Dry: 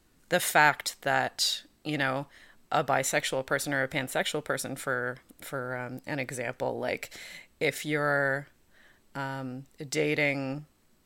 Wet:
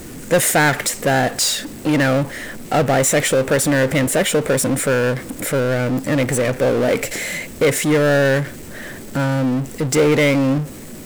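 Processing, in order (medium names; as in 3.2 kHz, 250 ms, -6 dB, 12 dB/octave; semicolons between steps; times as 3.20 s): ten-band graphic EQ 125 Hz +7 dB, 250 Hz +7 dB, 500 Hz +8 dB, 1 kHz -5 dB, 2 kHz +4 dB, 4 kHz -7 dB, 8 kHz +7 dB; bit crusher 11-bit; power-law waveshaper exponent 0.5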